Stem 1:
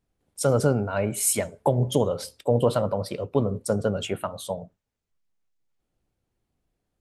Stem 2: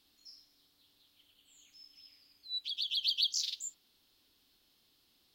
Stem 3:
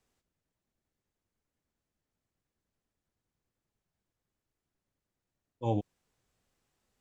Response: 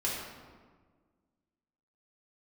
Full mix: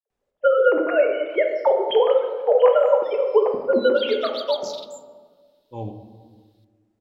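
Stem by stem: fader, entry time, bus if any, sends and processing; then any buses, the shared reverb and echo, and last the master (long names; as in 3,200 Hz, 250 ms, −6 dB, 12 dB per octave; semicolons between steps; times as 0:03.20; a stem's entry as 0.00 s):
+0.5 dB, 0.00 s, send −4.5 dB, three sine waves on the formant tracks; low-pass that shuts in the quiet parts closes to 770 Hz, open at −21 dBFS
−6.5 dB, 1.30 s, send −18.5 dB, parametric band 3,800 Hz +6.5 dB 0.24 octaves
−5.0 dB, 0.10 s, send −8 dB, high-shelf EQ 4,000 Hz −10 dB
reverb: on, RT60 1.5 s, pre-delay 3 ms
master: no processing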